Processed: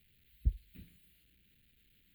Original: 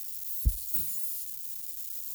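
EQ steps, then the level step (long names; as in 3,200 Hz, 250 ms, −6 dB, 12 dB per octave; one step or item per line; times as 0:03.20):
high-frequency loss of the air 350 metres
phaser with its sweep stopped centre 2,400 Hz, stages 4
−4.0 dB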